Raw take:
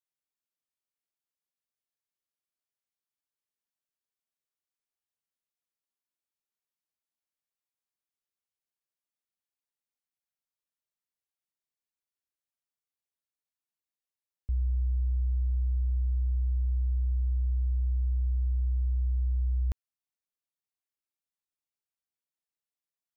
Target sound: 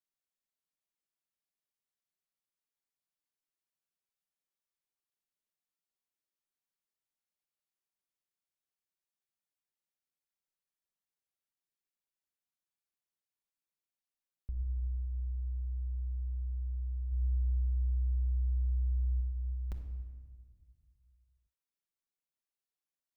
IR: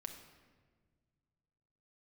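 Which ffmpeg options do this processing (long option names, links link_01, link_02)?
-filter_complex "[0:a]equalizer=frequency=65:width=6.4:gain=-6,asplit=3[link_01][link_02][link_03];[link_01]afade=type=out:start_time=17.11:duration=0.02[link_04];[link_02]acontrast=32,afade=type=in:start_time=17.11:duration=0.02,afade=type=out:start_time=19.2:duration=0.02[link_05];[link_03]afade=type=in:start_time=19.2:duration=0.02[link_06];[link_04][link_05][link_06]amix=inputs=3:normalize=0[link_07];[1:a]atrim=start_sample=2205[link_08];[link_07][link_08]afir=irnorm=-1:irlink=0"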